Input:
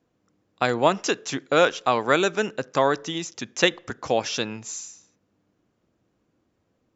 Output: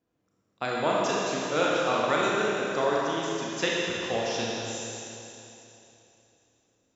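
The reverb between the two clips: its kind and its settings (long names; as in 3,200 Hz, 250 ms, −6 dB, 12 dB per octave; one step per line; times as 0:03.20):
four-comb reverb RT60 3.1 s, combs from 27 ms, DRR −5 dB
level −9.5 dB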